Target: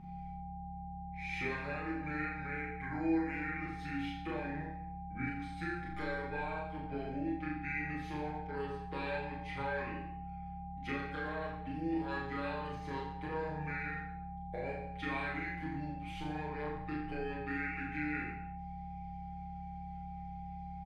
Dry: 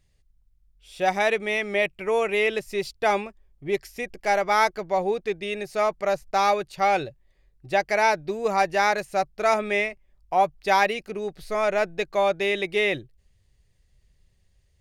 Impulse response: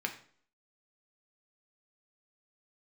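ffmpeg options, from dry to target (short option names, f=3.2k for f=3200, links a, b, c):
-filter_complex "[0:a]aecho=1:1:4.6:0.85,acrossover=split=240[a][b];[b]alimiter=limit=-12.5dB:level=0:latency=1:release=349[c];[a][c]amix=inputs=2:normalize=0,equalizer=f=1.25k:t=o:w=0.33:g=5,equalizer=f=3.15k:t=o:w=0.33:g=12,equalizer=f=10k:t=o:w=0.33:g=-9,acompressor=threshold=-33dB:ratio=6,flanger=delay=18.5:depth=4.1:speed=0.16,aeval=exprs='val(0)+0.0158*(sin(2*PI*50*n/s)+sin(2*PI*2*50*n/s)/2+sin(2*PI*3*50*n/s)/3+sin(2*PI*4*50*n/s)/4+sin(2*PI*5*50*n/s)/5)':c=same,asetrate=31311,aresample=44100,aeval=exprs='val(0)+0.00316*sin(2*PI*800*n/s)':c=same,aecho=1:1:40|86|138.9|199.7|269.7:0.631|0.398|0.251|0.158|0.1[d];[1:a]atrim=start_sample=2205[e];[d][e]afir=irnorm=-1:irlink=0,volume=-5.5dB"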